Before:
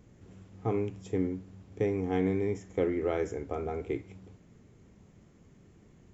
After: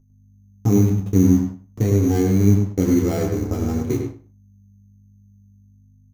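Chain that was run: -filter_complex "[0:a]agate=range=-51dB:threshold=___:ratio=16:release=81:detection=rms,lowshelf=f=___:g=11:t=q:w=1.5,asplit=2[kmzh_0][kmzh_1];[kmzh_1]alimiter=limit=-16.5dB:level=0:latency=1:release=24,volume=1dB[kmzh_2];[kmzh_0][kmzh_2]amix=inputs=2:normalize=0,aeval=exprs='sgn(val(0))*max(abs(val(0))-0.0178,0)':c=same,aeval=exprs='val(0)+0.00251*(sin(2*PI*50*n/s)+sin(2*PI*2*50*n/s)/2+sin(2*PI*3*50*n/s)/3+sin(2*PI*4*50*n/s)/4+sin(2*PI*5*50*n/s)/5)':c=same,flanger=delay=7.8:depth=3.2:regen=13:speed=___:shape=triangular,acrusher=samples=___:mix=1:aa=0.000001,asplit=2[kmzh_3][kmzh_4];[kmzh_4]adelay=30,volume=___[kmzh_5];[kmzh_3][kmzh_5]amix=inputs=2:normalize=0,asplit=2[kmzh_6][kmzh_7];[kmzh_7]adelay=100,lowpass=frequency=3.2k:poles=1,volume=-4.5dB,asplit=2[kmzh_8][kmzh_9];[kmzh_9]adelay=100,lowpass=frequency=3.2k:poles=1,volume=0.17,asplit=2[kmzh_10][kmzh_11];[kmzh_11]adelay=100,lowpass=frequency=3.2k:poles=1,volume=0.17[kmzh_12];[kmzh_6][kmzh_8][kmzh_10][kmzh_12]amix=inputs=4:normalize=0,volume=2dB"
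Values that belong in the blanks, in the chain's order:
-45dB, 350, 0.5, 7, -9dB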